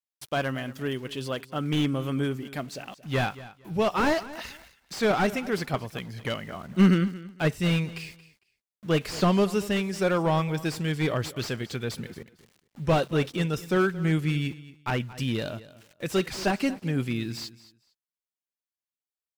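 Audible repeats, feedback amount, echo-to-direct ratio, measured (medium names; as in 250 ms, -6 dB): 2, 20%, -17.5 dB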